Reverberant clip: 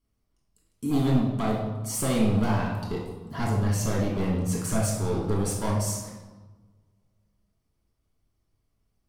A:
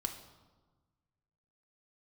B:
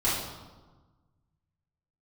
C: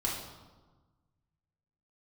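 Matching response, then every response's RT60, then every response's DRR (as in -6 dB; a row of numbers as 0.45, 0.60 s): C; 1.3, 1.3, 1.3 s; 4.0, -11.0, -5.0 dB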